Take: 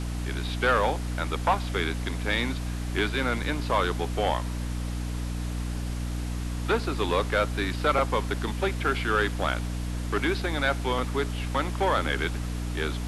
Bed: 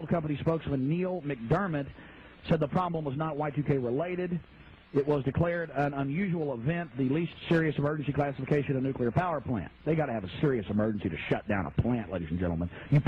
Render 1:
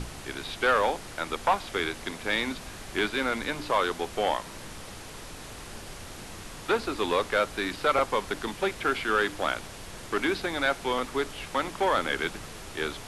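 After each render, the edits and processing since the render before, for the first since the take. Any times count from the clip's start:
mains-hum notches 60/120/180/240/300 Hz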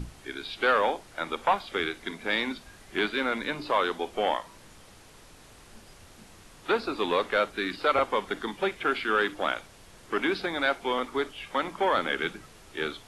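noise reduction from a noise print 10 dB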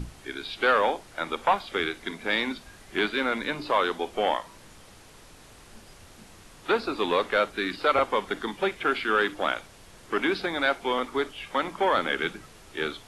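level +1.5 dB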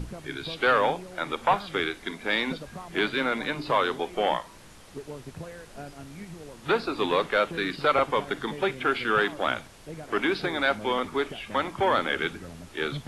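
mix in bed −12.5 dB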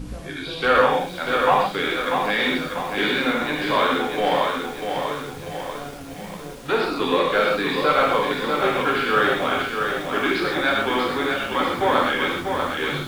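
reverb whose tail is shaped and stops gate 160 ms flat, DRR −2.5 dB
feedback echo at a low word length 642 ms, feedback 55%, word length 7 bits, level −5 dB

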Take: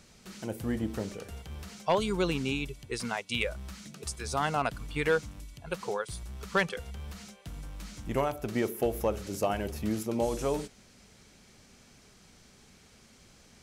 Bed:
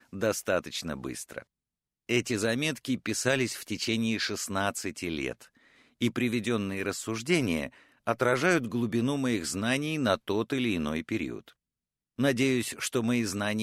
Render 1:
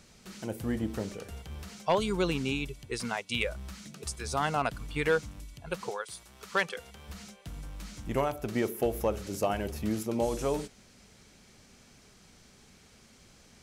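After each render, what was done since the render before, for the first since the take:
0:05.89–0:07.08: high-pass filter 810 Hz → 290 Hz 6 dB per octave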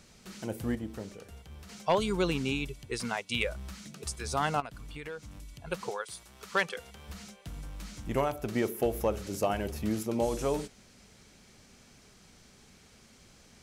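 0:00.75–0:01.69: clip gain −6 dB
0:04.60–0:05.64: downward compressor 3 to 1, threshold −42 dBFS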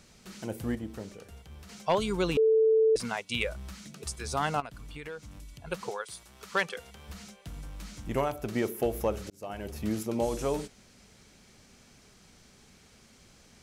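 0:02.37–0:02.96: beep over 442 Hz −19 dBFS
0:09.30–0:09.87: fade in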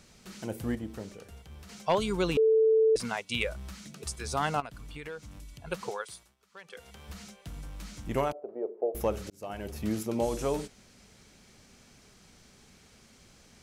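0:06.05–0:06.94: duck −21.5 dB, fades 0.31 s
0:08.32–0:08.95: flat-topped band-pass 530 Hz, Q 1.6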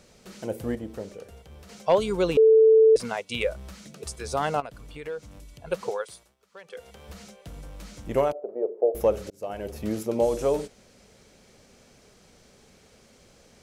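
parametric band 520 Hz +9 dB 0.89 octaves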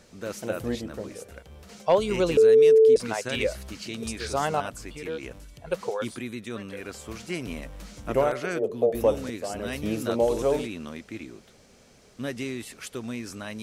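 mix in bed −7 dB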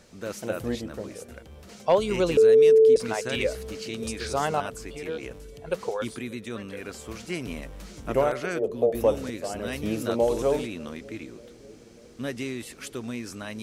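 bucket-brigade delay 592 ms, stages 2,048, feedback 74%, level −21 dB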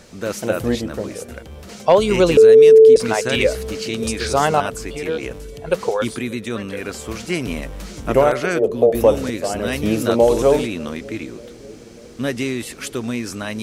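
level +9.5 dB
brickwall limiter −3 dBFS, peak gain reduction 2.5 dB

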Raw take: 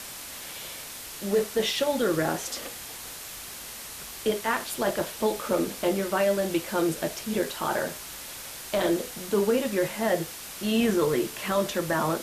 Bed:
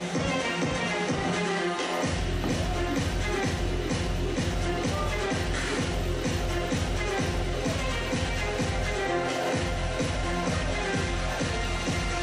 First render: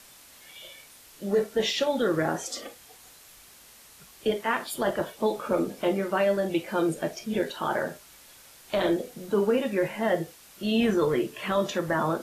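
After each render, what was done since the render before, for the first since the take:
noise reduction from a noise print 12 dB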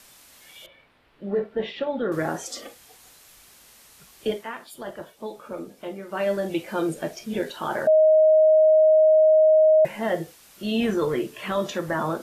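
0:00.66–0:02.12: high-frequency loss of the air 450 metres
0:04.30–0:06.28: duck −9 dB, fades 0.21 s
0:07.87–0:09.85: beep over 626 Hz −12.5 dBFS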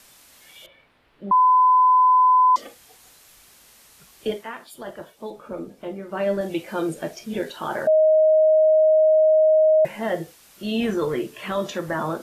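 0:01.31–0:02.56: beep over 1,010 Hz −12 dBFS
0:05.30–0:06.41: spectral tilt −1.5 dB per octave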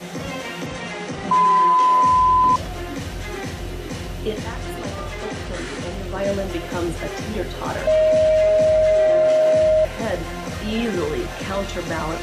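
mix in bed −1.5 dB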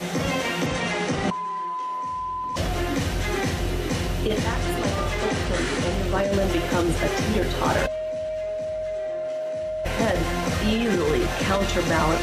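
compressor whose output falls as the input rises −24 dBFS, ratio −1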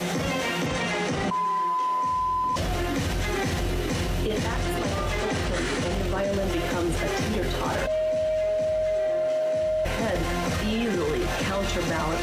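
leveller curve on the samples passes 1
brickwall limiter −19 dBFS, peak gain reduction 11 dB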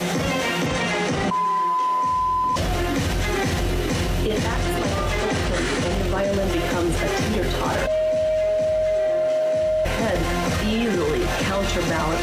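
level +4 dB

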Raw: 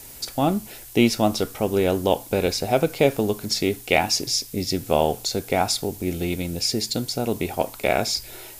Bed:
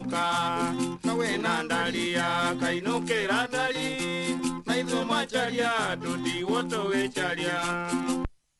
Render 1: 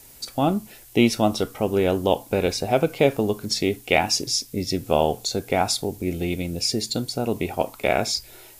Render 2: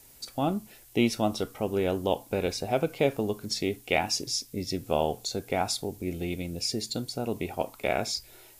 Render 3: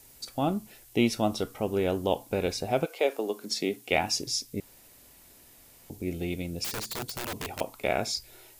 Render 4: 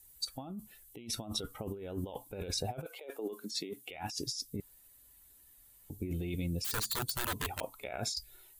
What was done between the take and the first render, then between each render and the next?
noise reduction from a noise print 6 dB
level −6.5 dB
0:02.84–0:03.90: high-pass filter 490 Hz → 120 Hz 24 dB per octave; 0:04.60–0:05.90: fill with room tone; 0:06.64–0:07.61: wrap-around overflow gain 28.5 dB
spectral dynamics exaggerated over time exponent 1.5; compressor whose output falls as the input rises −39 dBFS, ratio −1

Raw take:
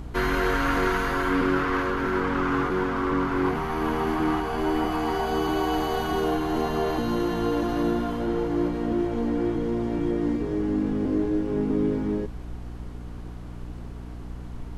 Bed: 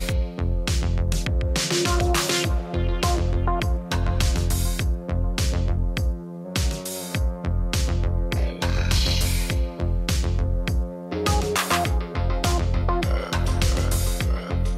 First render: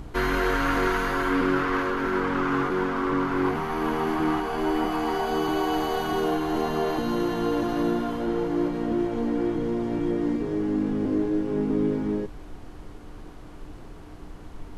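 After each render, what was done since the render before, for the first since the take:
hum removal 60 Hz, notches 4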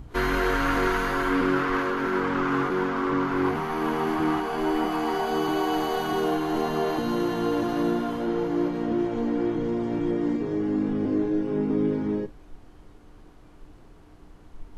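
noise reduction from a noise print 8 dB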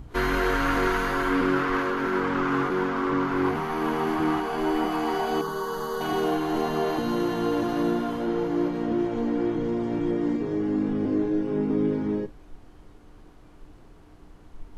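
0:05.41–0:06.01: phaser with its sweep stopped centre 480 Hz, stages 8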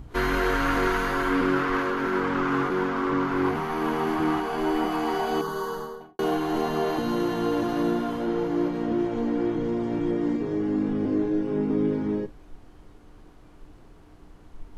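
0:05.63–0:06.19: fade out and dull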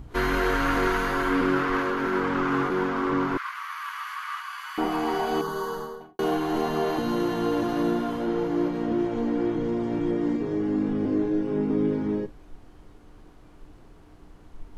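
0:03.37–0:04.78: Chebyshev high-pass filter 1,100 Hz, order 5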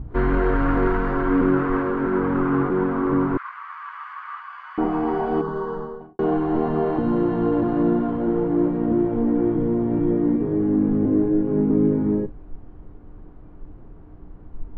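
low-pass filter 1,500 Hz 12 dB per octave
low-shelf EQ 380 Hz +9 dB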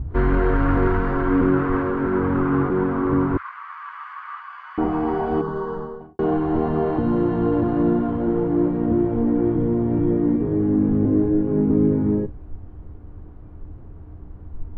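parametric band 80 Hz +11.5 dB 0.84 octaves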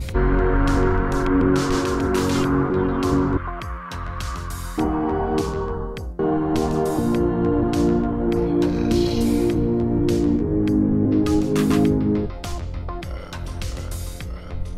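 mix in bed −8 dB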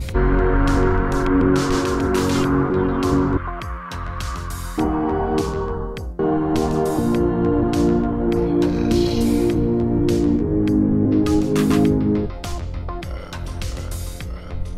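level +1.5 dB

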